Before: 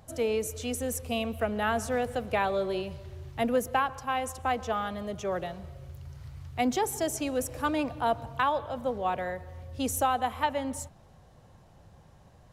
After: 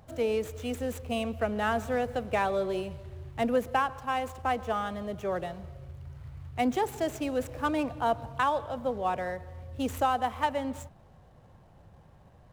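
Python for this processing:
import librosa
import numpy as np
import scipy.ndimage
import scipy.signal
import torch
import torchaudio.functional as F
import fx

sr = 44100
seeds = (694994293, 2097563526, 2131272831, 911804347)

y = scipy.ndimage.median_filter(x, 9, mode='constant')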